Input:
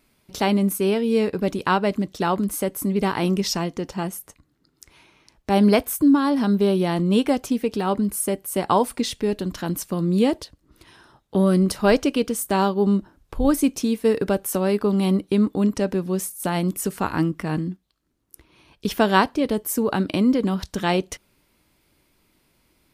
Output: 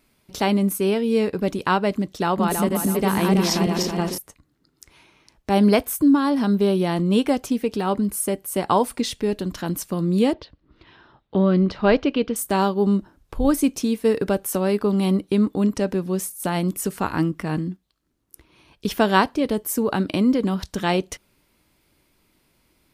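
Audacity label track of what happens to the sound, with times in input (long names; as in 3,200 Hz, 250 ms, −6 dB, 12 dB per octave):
2.210000	4.180000	feedback delay that plays each chunk backwards 162 ms, feedback 63%, level −2 dB
10.330000	12.360000	low-pass filter 4,000 Hz 24 dB per octave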